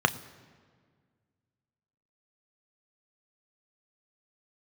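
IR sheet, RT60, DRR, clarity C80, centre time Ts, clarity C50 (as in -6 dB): 1.8 s, 9.5 dB, 18.5 dB, 6 ms, 17.5 dB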